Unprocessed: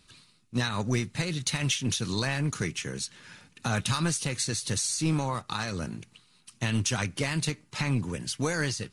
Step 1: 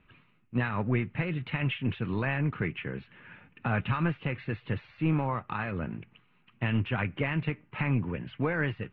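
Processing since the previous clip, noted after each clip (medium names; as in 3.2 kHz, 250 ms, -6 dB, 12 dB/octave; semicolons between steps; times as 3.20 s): steep low-pass 2.8 kHz 48 dB/octave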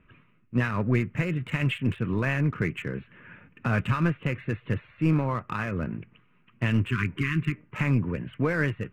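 local Wiener filter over 9 samples; peaking EQ 810 Hz -9.5 dB 0.32 oct; spectral replace 6.90–7.55 s, 420–1000 Hz both; trim +4 dB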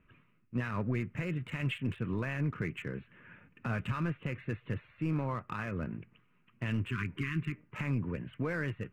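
peak limiter -18 dBFS, peak gain reduction 5.5 dB; trim -6.5 dB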